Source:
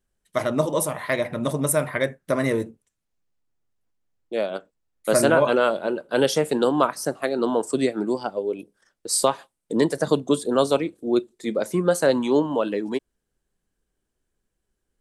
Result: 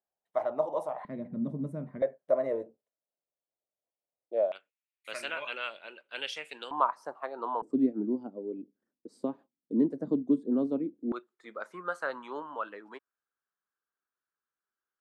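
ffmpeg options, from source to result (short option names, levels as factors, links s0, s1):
-af "asetnsamples=n=441:p=0,asendcmd='1.05 bandpass f 210;2.02 bandpass f 610;4.52 bandpass f 2500;6.71 bandpass f 980;7.62 bandpass f 260;11.12 bandpass f 1300',bandpass=f=750:t=q:w=3.9:csg=0"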